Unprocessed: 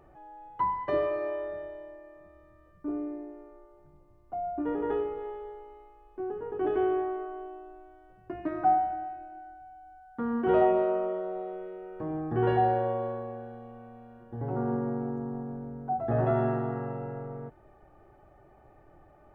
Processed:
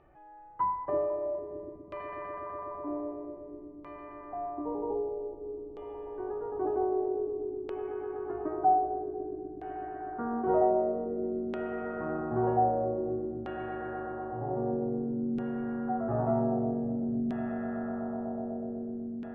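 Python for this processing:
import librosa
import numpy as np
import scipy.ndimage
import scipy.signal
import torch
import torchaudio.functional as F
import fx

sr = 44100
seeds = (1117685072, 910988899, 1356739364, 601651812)

y = fx.spec_erase(x, sr, start_s=3.51, length_s=2.0, low_hz=1200.0, high_hz=2700.0)
y = fx.echo_swell(y, sr, ms=124, loudest=8, wet_db=-12.0)
y = fx.filter_lfo_lowpass(y, sr, shape='saw_down', hz=0.52, low_hz=260.0, high_hz=3000.0, q=1.6)
y = y * librosa.db_to_amplitude(-5.0)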